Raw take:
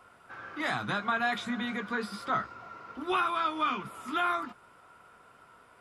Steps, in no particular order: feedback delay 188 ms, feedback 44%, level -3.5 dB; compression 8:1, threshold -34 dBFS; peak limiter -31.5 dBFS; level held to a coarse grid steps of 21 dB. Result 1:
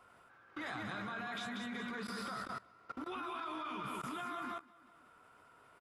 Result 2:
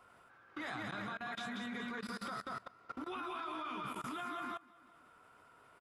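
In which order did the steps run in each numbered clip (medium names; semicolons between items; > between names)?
peak limiter > feedback delay > compression > level held to a coarse grid; compression > feedback delay > peak limiter > level held to a coarse grid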